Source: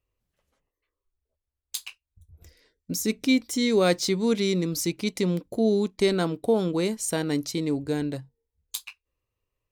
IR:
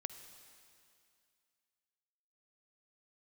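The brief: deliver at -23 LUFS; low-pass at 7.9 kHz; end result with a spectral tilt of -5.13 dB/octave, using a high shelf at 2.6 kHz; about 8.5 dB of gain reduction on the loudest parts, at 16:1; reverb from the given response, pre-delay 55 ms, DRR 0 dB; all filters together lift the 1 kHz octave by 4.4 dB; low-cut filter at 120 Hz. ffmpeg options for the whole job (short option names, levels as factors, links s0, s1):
-filter_complex "[0:a]highpass=120,lowpass=7900,equalizer=f=1000:t=o:g=7,highshelf=f=2600:g=-4.5,acompressor=threshold=0.0631:ratio=16,asplit=2[s0][s1];[1:a]atrim=start_sample=2205,adelay=55[s2];[s1][s2]afir=irnorm=-1:irlink=0,volume=1.33[s3];[s0][s3]amix=inputs=2:normalize=0,volume=1.68"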